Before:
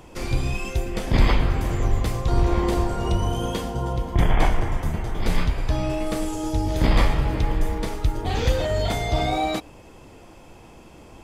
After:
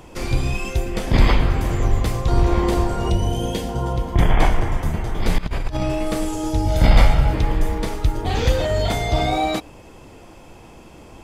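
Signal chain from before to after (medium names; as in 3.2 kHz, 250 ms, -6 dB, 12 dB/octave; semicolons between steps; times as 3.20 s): 3.10–3.69 s: peaking EQ 1.2 kHz -12.5 dB 0.51 oct; 5.38–5.83 s: compressor with a negative ratio -25 dBFS, ratio -0.5; 6.65–7.33 s: comb 1.4 ms, depth 49%; trim +3 dB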